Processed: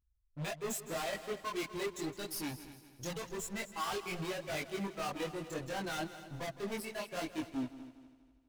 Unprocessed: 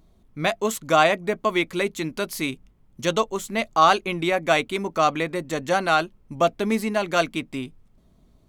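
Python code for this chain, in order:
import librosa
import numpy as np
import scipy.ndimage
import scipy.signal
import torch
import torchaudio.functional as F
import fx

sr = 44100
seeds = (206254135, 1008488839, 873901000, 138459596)

y = fx.bin_expand(x, sr, power=2.0)
y = fx.highpass(y, sr, hz=fx.line((6.5, 210.0), (7.1, 800.0)), slope=12, at=(6.5, 7.1), fade=0.02)
y = fx.leveller(y, sr, passes=3)
y = 10.0 ** (-32.5 / 20.0) * np.tanh(y / 10.0 ** (-32.5 / 20.0))
y = fx.chorus_voices(y, sr, voices=2, hz=0.88, base_ms=22, depth_ms=3.4, mix_pct=50)
y = fx.echo_heads(y, sr, ms=81, heads='second and third', feedback_pct=44, wet_db=-15.0)
y = y * 10.0 ** (-1.0 / 20.0)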